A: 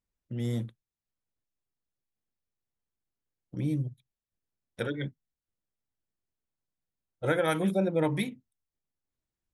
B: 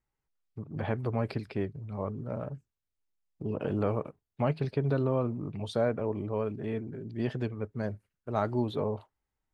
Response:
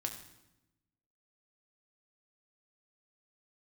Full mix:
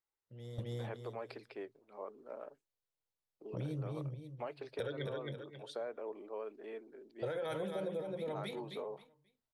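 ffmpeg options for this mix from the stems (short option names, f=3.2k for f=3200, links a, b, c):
-filter_complex "[0:a]equalizer=f=125:t=o:w=1:g=5,equalizer=f=250:t=o:w=1:g=-6,equalizer=f=500:t=o:w=1:g=11,equalizer=f=1k:t=o:w=1:g=5,equalizer=f=4k:t=o:w=1:g=9,alimiter=limit=-16dB:level=0:latency=1:release=24,volume=-5dB,asplit=2[a][b];[b]volume=-6dB[c];[1:a]highpass=f=350:w=0.5412,highpass=f=350:w=1.3066,volume=-8.5dB,asplit=2[d][e];[e]apad=whole_len=420475[f];[a][f]sidechaingate=range=-16dB:threshold=-59dB:ratio=16:detection=peak[g];[c]aecho=0:1:267|534|801|1068:1|0.25|0.0625|0.0156[h];[g][d][h]amix=inputs=3:normalize=0,acompressor=threshold=-37dB:ratio=5"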